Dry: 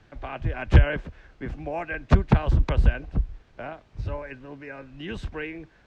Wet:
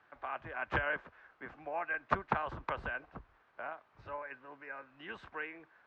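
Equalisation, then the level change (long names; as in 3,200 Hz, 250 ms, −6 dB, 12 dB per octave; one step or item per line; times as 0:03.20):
resonant band-pass 1,200 Hz, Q 1.7
0.0 dB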